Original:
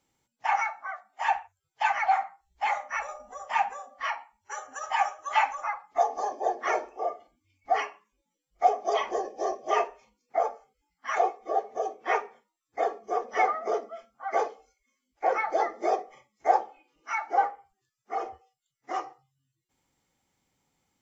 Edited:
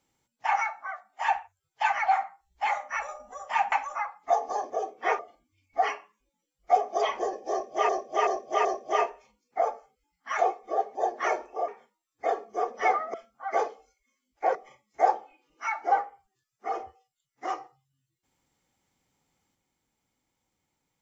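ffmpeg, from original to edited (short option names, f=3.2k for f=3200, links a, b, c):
-filter_complex "[0:a]asplit=11[a][b][c][d][e][f][g][h][i][j][k];[a]atrim=end=3.722[l];[b]atrim=start=5.398:end=6.382[m];[c]atrim=start=11.728:end=12.222[n];[d]atrim=start=7.108:end=9.812[o];[e]atrim=start=9.428:end=9.812[p];[f]atrim=start=9.428:end=9.812[q];[g]atrim=start=9.428:end=11.732[r];[h]atrim=start=6.378:end=7.112[s];[i]atrim=start=12.218:end=13.682[t];[j]atrim=start=13.938:end=15.352[u];[k]atrim=start=16.008[v];[l][m]acrossfade=d=0.004:c1=hsin:c2=hsin[w];[w][n]acrossfade=d=0.004:c1=hsin:c2=hsin[x];[x][o]acrossfade=d=0.004:c1=hsin:c2=hsin[y];[y][p]acrossfade=d=0.004:c1=hsin:c2=hsin[z];[z][q]acrossfade=d=0.004:c1=hsin:c2=hsin[aa];[aa][r]acrossfade=d=0.004:c1=hsin:c2=hsin[ab];[ab][s]acrossfade=d=0.004:c1=hsin:c2=hsin[ac];[ac][t]acrossfade=d=0.004:c1=hsin:c2=hsin[ad];[ad][u]acrossfade=d=0.004:c1=hsin:c2=hsin[ae];[ae][v]acrossfade=d=0.004:c1=hsin:c2=hsin"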